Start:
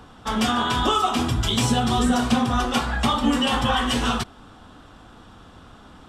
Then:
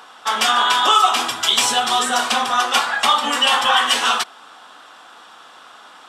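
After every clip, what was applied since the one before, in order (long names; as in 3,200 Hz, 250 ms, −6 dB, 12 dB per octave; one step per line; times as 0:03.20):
high-pass filter 830 Hz 12 dB per octave
level +9 dB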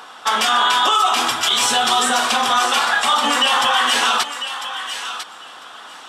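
brickwall limiter −11.5 dBFS, peak gain reduction 9.5 dB
feedback echo with a high-pass in the loop 999 ms, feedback 17%, high-pass 1,000 Hz, level −9 dB
level +4 dB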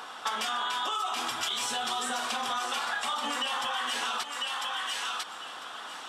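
downward compressor 6 to 1, threshold −26 dBFS, peak gain reduction 13 dB
level −3.5 dB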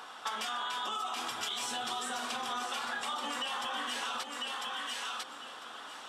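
bucket-brigade delay 516 ms, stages 2,048, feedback 56%, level −4 dB
level −5 dB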